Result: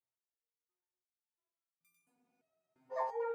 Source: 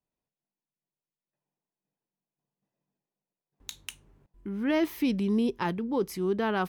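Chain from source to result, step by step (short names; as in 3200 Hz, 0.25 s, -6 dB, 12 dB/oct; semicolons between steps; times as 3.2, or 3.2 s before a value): FFT order left unsorted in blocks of 16 samples; flutter echo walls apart 7 m, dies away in 0.51 s; treble ducked by the level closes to 600 Hz, closed at -22.5 dBFS; bell 410 Hz +8.5 dB 1.2 oct; speed mistake 7.5 ips tape played at 15 ips; notch 3300 Hz; tape echo 73 ms, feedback 78%, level -15.5 dB, low-pass 4400 Hz; frequency shift +72 Hz; rotary speaker horn 1.2 Hz; spectral freeze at 2.13, 0.78 s; stepped resonator 2.9 Hz 130–1200 Hz; gain -2.5 dB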